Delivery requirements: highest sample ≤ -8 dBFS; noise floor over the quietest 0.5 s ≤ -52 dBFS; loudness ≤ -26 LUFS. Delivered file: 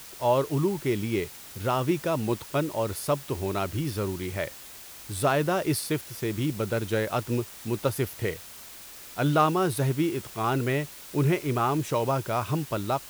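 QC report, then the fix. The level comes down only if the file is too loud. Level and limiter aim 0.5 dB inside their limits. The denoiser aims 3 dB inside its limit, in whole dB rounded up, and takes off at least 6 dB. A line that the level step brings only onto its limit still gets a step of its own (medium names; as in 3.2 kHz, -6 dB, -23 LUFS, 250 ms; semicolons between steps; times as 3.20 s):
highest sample -10.0 dBFS: pass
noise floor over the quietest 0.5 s -45 dBFS: fail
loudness -28.0 LUFS: pass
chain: noise reduction 10 dB, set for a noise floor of -45 dBFS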